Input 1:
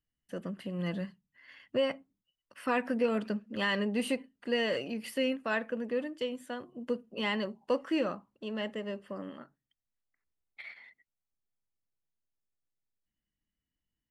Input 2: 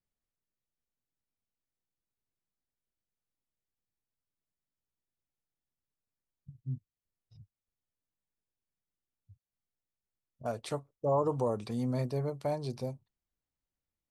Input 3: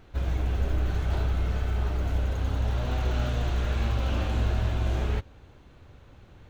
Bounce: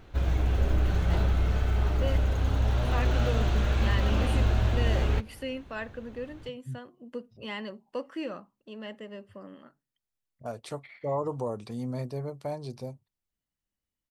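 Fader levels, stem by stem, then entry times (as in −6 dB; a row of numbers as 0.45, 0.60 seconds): −5.0, −1.5, +1.5 decibels; 0.25, 0.00, 0.00 seconds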